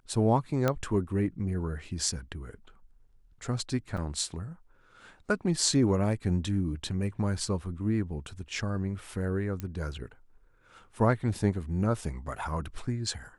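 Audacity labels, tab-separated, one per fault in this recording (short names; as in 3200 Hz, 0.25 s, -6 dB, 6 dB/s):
0.680000	0.680000	pop -13 dBFS
3.970000	3.980000	gap 5.6 ms
9.600000	9.600000	pop -21 dBFS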